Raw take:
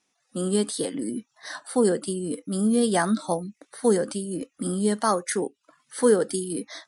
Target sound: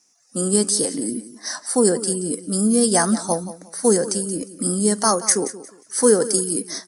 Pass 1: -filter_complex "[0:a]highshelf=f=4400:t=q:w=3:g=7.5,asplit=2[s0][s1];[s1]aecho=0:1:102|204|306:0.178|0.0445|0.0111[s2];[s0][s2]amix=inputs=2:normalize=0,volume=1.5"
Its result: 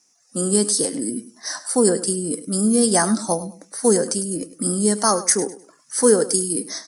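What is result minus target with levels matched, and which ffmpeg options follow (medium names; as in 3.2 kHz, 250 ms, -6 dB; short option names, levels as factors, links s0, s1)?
echo 76 ms early
-filter_complex "[0:a]highshelf=f=4400:t=q:w=3:g=7.5,asplit=2[s0][s1];[s1]aecho=0:1:178|356|534:0.178|0.0445|0.0111[s2];[s0][s2]amix=inputs=2:normalize=0,volume=1.5"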